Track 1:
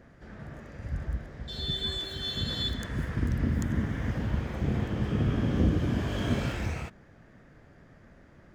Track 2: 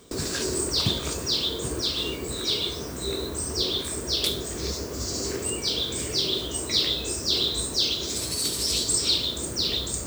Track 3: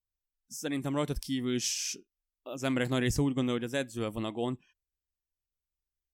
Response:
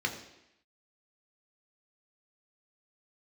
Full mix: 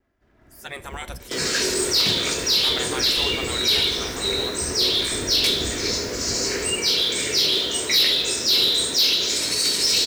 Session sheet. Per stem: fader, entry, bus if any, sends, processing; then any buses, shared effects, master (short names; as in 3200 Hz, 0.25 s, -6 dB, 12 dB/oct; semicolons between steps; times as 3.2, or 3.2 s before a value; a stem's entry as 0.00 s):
-15.5 dB, 0.00 s, no send, minimum comb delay 3 ms
-8.5 dB, 1.20 s, send -7 dB, weighting filter D
-1.5 dB, 0.00 s, send -15.5 dB, spectral gate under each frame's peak -15 dB weak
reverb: on, RT60 0.85 s, pre-delay 3 ms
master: short-mantissa float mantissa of 4-bit; soft clip -22.5 dBFS, distortion -14 dB; AGC gain up to 10 dB